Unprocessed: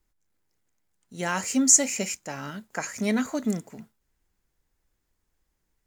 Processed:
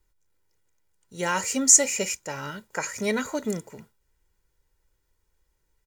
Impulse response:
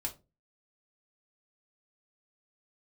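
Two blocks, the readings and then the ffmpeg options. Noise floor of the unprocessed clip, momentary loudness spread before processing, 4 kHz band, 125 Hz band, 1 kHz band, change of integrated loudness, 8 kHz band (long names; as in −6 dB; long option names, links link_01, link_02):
−77 dBFS, 17 LU, +2.0 dB, −2.0 dB, +2.5 dB, +1.5 dB, +2.0 dB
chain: -af "aecho=1:1:2.1:0.54,volume=1dB"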